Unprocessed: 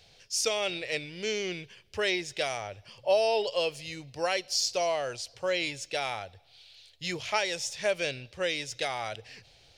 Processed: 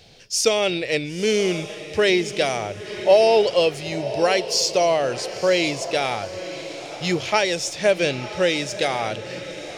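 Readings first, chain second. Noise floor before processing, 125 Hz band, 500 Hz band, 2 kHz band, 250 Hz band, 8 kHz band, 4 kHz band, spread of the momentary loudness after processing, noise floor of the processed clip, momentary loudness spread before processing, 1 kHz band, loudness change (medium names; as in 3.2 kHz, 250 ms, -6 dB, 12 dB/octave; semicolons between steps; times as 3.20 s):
-60 dBFS, +13.0 dB, +11.0 dB, +7.5 dB, +14.5 dB, +7.5 dB, +7.5 dB, 11 LU, -36 dBFS, 12 LU, +9.0 dB, +9.5 dB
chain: peaking EQ 250 Hz +9 dB 1.9 oct; on a send: echo that smears into a reverb 983 ms, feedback 44%, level -12 dB; on the sum: trim +7 dB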